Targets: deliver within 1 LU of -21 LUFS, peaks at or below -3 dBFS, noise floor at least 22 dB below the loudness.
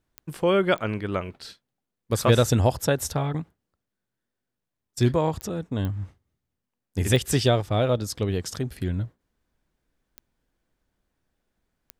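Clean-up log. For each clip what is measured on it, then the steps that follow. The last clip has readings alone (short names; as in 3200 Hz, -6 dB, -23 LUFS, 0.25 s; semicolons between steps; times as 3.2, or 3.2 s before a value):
clicks 7; loudness -25.0 LUFS; peak -6.0 dBFS; loudness target -21.0 LUFS
-> de-click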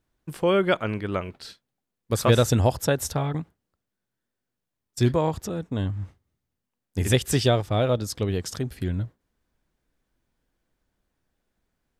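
clicks 0; loudness -25.0 LUFS; peak -6.0 dBFS; loudness target -21.0 LUFS
-> gain +4 dB; limiter -3 dBFS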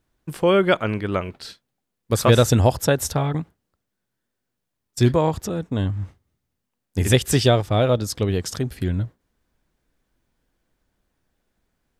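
loudness -21.0 LUFS; peak -3.0 dBFS; noise floor -80 dBFS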